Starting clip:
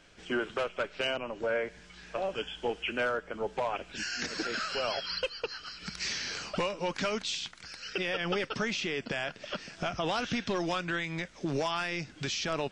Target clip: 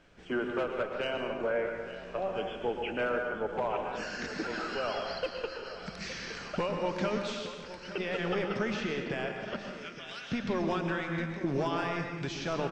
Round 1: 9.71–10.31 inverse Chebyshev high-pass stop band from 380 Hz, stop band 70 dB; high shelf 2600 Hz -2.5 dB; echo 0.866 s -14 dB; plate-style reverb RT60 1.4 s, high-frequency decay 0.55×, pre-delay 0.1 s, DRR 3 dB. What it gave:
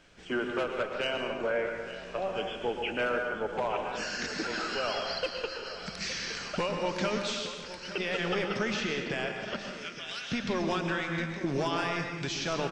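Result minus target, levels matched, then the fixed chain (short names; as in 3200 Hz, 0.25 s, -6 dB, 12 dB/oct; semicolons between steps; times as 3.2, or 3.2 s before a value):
4000 Hz band +4.5 dB
9.71–10.31 inverse Chebyshev high-pass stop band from 380 Hz, stop band 70 dB; high shelf 2600 Hz -12 dB; echo 0.866 s -14 dB; plate-style reverb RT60 1.4 s, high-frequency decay 0.55×, pre-delay 0.1 s, DRR 3 dB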